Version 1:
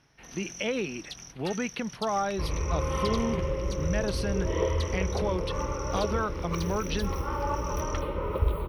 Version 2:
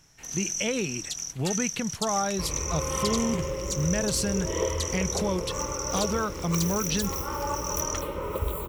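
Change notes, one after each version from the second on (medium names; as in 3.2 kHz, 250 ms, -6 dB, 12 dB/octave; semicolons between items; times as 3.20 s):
speech: remove high-pass 220 Hz; second sound: add bass shelf 83 Hz -8 dB; master: remove boxcar filter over 6 samples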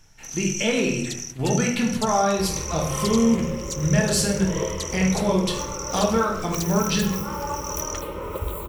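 reverb: on, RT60 0.75 s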